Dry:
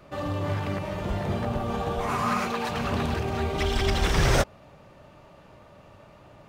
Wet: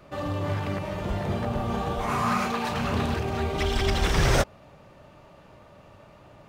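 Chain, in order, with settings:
0:01.54–0:03.15: double-tracking delay 35 ms −7.5 dB

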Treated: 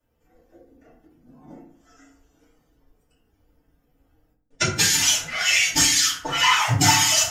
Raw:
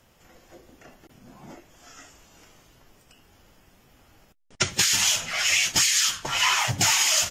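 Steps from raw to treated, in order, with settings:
spectral dynamics exaggerated over time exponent 1.5
feedback delay network reverb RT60 0.58 s, low-frequency decay 1.35×, high-frequency decay 0.5×, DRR −6.5 dB

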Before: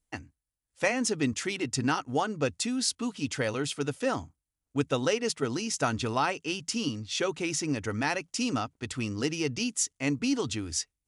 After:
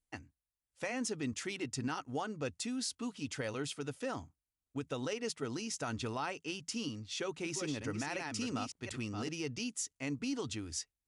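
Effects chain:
0:07.07–0:09.29: delay that plays each chunk backwards 365 ms, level −6 dB
brickwall limiter −20 dBFS, peak gain reduction 7 dB
level −7.5 dB

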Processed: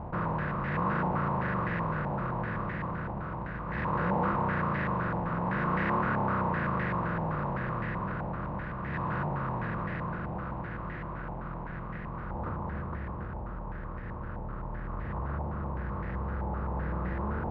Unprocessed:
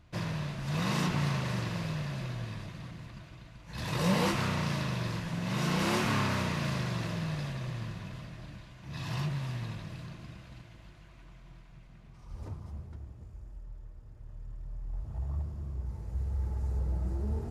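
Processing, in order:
compressor on every frequency bin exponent 0.4
in parallel at −11 dB: comparator with hysteresis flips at −35.5 dBFS
on the sum: high-frequency loss of the air 120 metres
low-pass on a step sequencer 7.8 Hz 860–1,800 Hz
level −7.5 dB

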